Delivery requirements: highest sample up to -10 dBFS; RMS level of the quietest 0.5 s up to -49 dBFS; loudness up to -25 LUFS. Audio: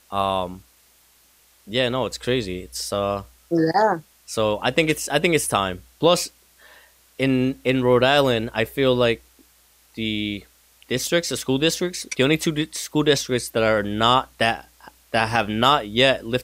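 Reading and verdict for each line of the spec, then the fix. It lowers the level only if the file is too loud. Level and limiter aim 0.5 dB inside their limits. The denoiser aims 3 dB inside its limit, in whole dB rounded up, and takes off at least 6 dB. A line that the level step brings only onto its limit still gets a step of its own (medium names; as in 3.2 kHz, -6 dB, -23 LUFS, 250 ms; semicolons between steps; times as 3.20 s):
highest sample -4.5 dBFS: fail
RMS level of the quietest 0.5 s -57 dBFS: pass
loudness -21.5 LUFS: fail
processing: trim -4 dB; peak limiter -10.5 dBFS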